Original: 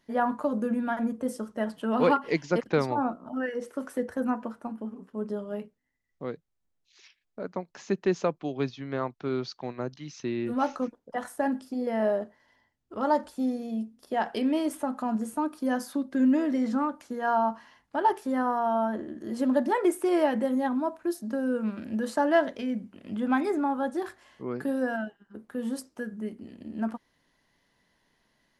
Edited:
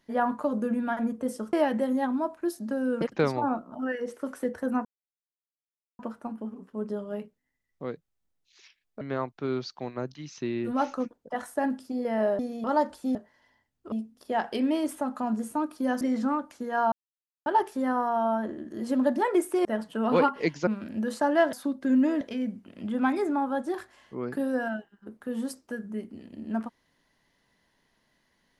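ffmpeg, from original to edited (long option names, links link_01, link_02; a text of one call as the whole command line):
ffmpeg -i in.wav -filter_complex "[0:a]asplit=16[link_01][link_02][link_03][link_04][link_05][link_06][link_07][link_08][link_09][link_10][link_11][link_12][link_13][link_14][link_15][link_16];[link_01]atrim=end=1.532[link_17];[link_02]atrim=start=20.148:end=21.632[link_18];[link_03]atrim=start=2.548:end=4.39,asetpts=PTS-STARTPTS,afade=type=out:start_time=1.838:duration=0.004:curve=hsin,apad=pad_dur=1.14[link_19];[link_04]atrim=start=4.39:end=7.412,asetpts=PTS-STARTPTS,afade=type=in:duration=0.004:curve=hsin[link_20];[link_05]atrim=start=8.828:end=12.212[link_21];[link_06]atrim=start=13.488:end=13.742[link_22];[link_07]atrim=start=12.978:end=13.492[link_23];[link_08]atrim=start=12.208:end=12.982[link_24];[link_09]atrim=start=13.738:end=15.832[link_25];[link_10]atrim=start=16.508:end=17.42,asetpts=PTS-STARTPTS,afade=type=out:start_time=0.908:duration=0.004:curve=hsin[link_26];[link_11]atrim=start=17.42:end=17.96,asetpts=PTS-STARTPTS,volume=0[link_27];[link_12]atrim=start=17.96:end=20.152,asetpts=PTS-STARTPTS,afade=type=in:duration=0.004:curve=hsin[link_28];[link_13]atrim=start=1.528:end=2.552[link_29];[link_14]atrim=start=21.628:end=22.492[link_30];[link_15]atrim=start=15.828:end=16.512[link_31];[link_16]atrim=start=22.488[link_32];[link_17][link_18]acrossfade=duration=0.004:curve1=hsin:curve2=hsin[link_33];[link_19][link_20]concat=n=2:v=0:a=1[link_34];[link_33][link_34]acrossfade=duration=0.004:curve1=hsin:curve2=hsin[link_35];[link_35][link_21]acrossfade=duration=0.004:curve1=hsin:curve2=hsin[link_36];[link_36][link_22]acrossfade=duration=0.004:curve1=hsin:curve2=hsin[link_37];[link_37][link_23]acrossfade=duration=0.004:curve1=hsin:curve2=hsin[link_38];[link_38][link_24]acrossfade=duration=0.004:curve1=hsin:curve2=hsin[link_39];[link_39][link_25]acrossfade=duration=0.004:curve1=hsin:curve2=hsin[link_40];[link_26][link_27][link_28]concat=n=3:v=0:a=1[link_41];[link_40][link_41]acrossfade=duration=0.004:curve1=hsin:curve2=hsin[link_42];[link_42][link_29]acrossfade=duration=0.004:curve1=hsin:curve2=hsin[link_43];[link_43][link_30]acrossfade=duration=0.004:curve1=hsin:curve2=hsin[link_44];[link_44][link_31]acrossfade=duration=0.004:curve1=hsin:curve2=hsin[link_45];[link_45][link_32]acrossfade=duration=0.004:curve1=hsin:curve2=hsin" out.wav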